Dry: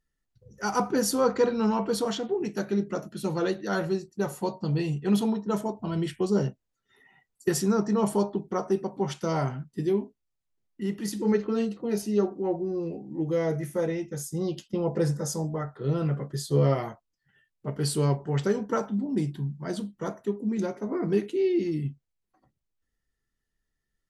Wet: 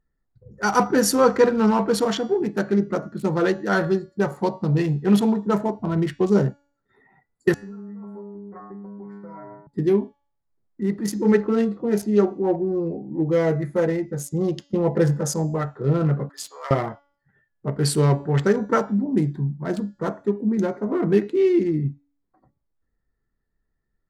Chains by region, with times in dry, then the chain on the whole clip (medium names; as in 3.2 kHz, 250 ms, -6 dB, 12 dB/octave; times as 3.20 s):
7.54–9.67 s: resonant high shelf 2.5 kHz -8.5 dB, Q 3 + inharmonic resonator 100 Hz, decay 0.75 s, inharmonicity 0.002 + compression 16:1, threshold -40 dBFS
16.29–16.71 s: high-pass 960 Hz 24 dB/octave + upward compressor, threshold -50 dBFS
whole clip: local Wiener filter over 15 samples; de-hum 284.4 Hz, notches 27; dynamic bell 1.8 kHz, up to +5 dB, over -48 dBFS, Q 1.4; trim +6.5 dB